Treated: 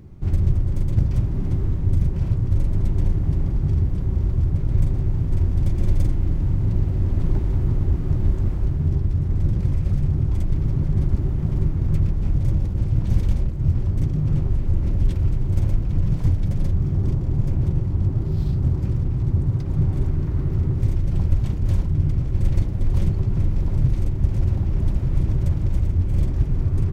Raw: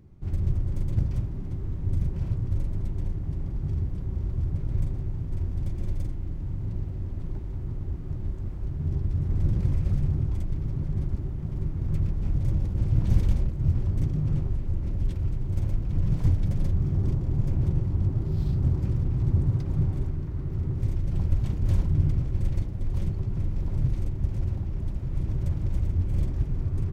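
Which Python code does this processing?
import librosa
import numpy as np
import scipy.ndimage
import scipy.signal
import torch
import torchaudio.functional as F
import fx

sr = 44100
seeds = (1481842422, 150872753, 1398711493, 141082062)

y = fx.rider(x, sr, range_db=10, speed_s=0.5)
y = F.gain(torch.from_numpy(y), 6.0).numpy()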